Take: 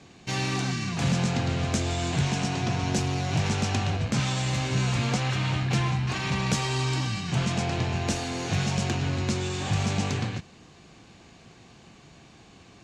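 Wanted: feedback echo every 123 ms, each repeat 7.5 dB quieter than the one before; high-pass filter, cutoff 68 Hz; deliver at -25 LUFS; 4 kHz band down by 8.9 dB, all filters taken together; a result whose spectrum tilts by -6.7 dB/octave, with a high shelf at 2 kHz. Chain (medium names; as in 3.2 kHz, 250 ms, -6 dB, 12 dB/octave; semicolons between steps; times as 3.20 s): high-pass 68 Hz; treble shelf 2 kHz -3 dB; peaking EQ 4 kHz -9 dB; feedback delay 123 ms, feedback 42%, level -7.5 dB; trim +1.5 dB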